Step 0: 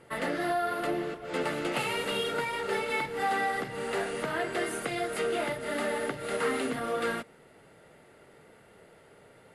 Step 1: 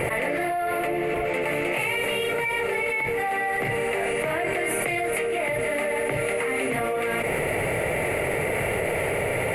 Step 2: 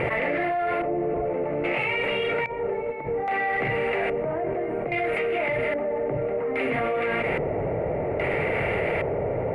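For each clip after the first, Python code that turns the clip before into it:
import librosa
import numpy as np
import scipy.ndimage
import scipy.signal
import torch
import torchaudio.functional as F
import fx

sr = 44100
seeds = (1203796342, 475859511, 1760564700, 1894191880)

y1 = fx.curve_eq(x, sr, hz=(110.0, 220.0, 610.0, 1500.0, 2300.0, 3400.0, 5500.0, 13000.0), db=(0, -9, 0, -10, 7, -12, -16, 4))
y1 = fx.env_flatten(y1, sr, amount_pct=100)
y2 = fx.cheby_harmonics(y1, sr, harmonics=(5,), levels_db=(-31,), full_scale_db=-13.0)
y2 = fx.filter_lfo_lowpass(y2, sr, shape='square', hz=0.61, low_hz=780.0, high_hz=2800.0, q=0.78)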